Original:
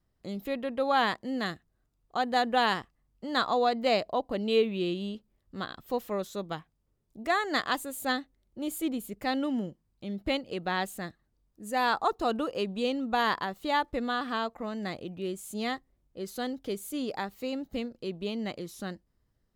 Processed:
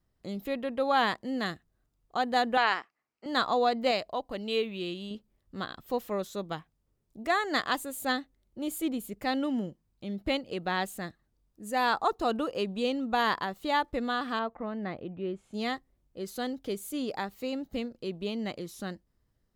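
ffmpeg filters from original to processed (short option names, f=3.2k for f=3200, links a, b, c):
-filter_complex "[0:a]asettb=1/sr,asplit=3[a][b][c];[a]atrim=end=2.574[d];[b]atrim=start=2.57:end=3.26,asetpts=PTS-STARTPTS,afade=t=in:d=0.004:c=qsin,afade=t=out:st=0.686:d=0.004:c=qsin,highpass=440,equalizer=f=540:t=q:w=4:g=-4,equalizer=f=1.4k:t=q:w=4:g=4,equalizer=f=2.3k:t=q:w=4:g=7,equalizer=f=3.5k:t=q:w=4:g=-7,equalizer=f=6.3k:t=q:w=4:g=-3,lowpass=f=6.7k:w=0.5412,lowpass=f=6.7k:w=1.3066[e];[c]atrim=start=3.256[f];[d][e]acrossfade=d=0.004:c1=hsin:c2=qsin[g];[g][f]acrossfade=d=0.004:c1=qsin:c2=hsin,asettb=1/sr,asplit=3[h][i][j];[h]atrim=end=3.914[k];[i]atrim=start=3.91:end=5.11,asetpts=PTS-STARTPTS,afade=t=in:d=0.004:c=qsin,afade=t=out:st=1.196:d=0.004:c=qsin,equalizer=f=250:w=0.31:g=-6[l];[j]atrim=start=5.106[m];[k][l]acrossfade=d=0.004:c1=hsin:c2=qsin[n];[n][m]acrossfade=d=0.004:c1=qsin:c2=hsin,asettb=1/sr,asplit=3[o][p][q];[o]atrim=end=14.394[r];[p]atrim=start=14.39:end=15.54,asetpts=PTS-STARTPTS,afade=t=in:d=0.004:c=qsin,afade=t=out:st=1.146:d=0.004:c=qsin,lowpass=2.1k[s];[q]atrim=start=15.536[t];[r][s]acrossfade=d=0.004:c1=hsin:c2=qsin[u];[u][t]acrossfade=d=0.004:c1=qsin:c2=hsin"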